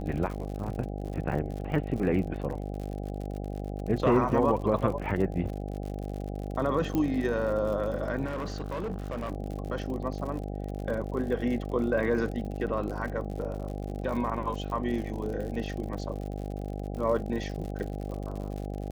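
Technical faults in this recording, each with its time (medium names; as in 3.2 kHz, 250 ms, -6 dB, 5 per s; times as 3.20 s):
buzz 50 Hz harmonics 16 -35 dBFS
crackle 72 per s -36 dBFS
6.95 s: pop -17 dBFS
8.25–9.32 s: clipped -29.5 dBFS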